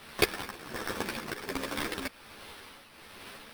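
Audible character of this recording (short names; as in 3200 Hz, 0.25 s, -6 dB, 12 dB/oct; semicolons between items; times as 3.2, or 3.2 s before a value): a quantiser's noise floor 8-bit, dither triangular; tremolo triangle 1.3 Hz, depth 65%; aliases and images of a low sample rate 7000 Hz, jitter 0%; a shimmering, thickened sound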